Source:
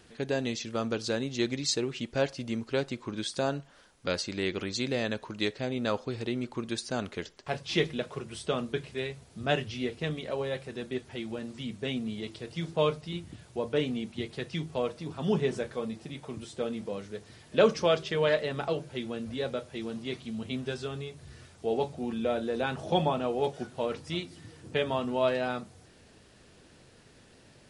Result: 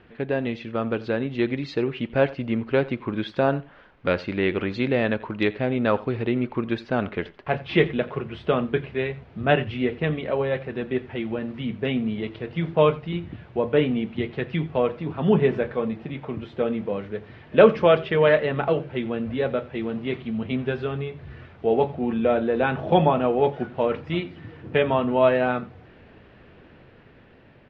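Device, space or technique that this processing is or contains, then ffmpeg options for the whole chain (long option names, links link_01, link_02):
action camera in a waterproof case: -af "lowpass=frequency=2700:width=0.5412,lowpass=frequency=2700:width=1.3066,aecho=1:1:87:0.1,dynaudnorm=framelen=720:gausssize=5:maxgain=3.5dB,volume=5dB" -ar 32000 -c:a aac -b:a 96k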